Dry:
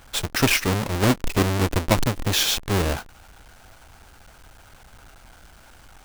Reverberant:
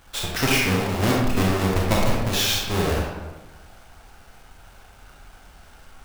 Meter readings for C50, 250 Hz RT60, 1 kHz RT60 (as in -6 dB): -0.5 dB, 1.3 s, 1.2 s